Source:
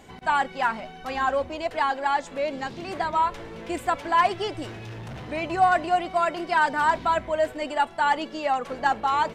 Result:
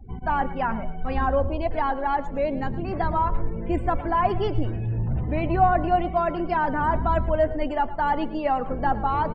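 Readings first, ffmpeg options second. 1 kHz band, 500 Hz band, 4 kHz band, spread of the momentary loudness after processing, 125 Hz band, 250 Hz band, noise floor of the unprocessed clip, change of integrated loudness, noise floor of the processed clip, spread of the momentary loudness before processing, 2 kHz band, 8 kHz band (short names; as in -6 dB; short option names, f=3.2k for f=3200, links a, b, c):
-1.0 dB, +2.0 dB, -8.5 dB, 5 LU, +13.5 dB, +6.0 dB, -43 dBFS, 0.0 dB, -33 dBFS, 12 LU, -5.5 dB, under -20 dB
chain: -filter_complex "[0:a]acrossover=split=980[a][b];[b]alimiter=limit=-23dB:level=0:latency=1:release=66[c];[a][c]amix=inputs=2:normalize=0,lowshelf=f=62:g=5.5,afftdn=nr=29:nf=-41,aemphasis=mode=reproduction:type=riaa,aecho=1:1:112|224|336:0.158|0.0428|0.0116"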